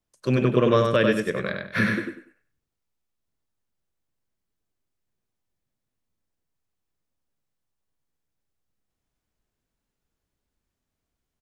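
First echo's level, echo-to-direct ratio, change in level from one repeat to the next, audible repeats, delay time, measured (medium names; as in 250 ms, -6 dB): -4.0 dB, -3.5 dB, -12.0 dB, 3, 97 ms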